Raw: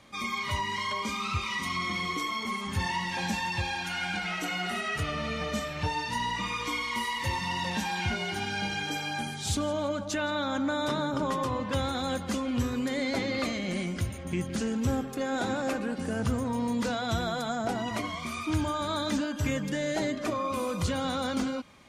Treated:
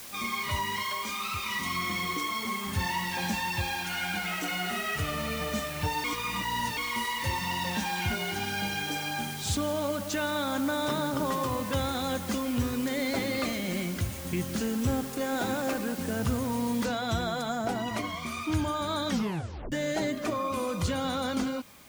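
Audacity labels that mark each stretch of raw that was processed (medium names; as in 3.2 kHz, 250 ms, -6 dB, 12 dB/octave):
0.830000	1.460000	bass shelf 460 Hz -9.5 dB
6.040000	6.770000	reverse
12.470000	12.870000	treble shelf 8.8 kHz -8 dB
16.850000	16.850000	noise floor step -44 dB -56 dB
19.070000	19.070000	tape stop 0.65 s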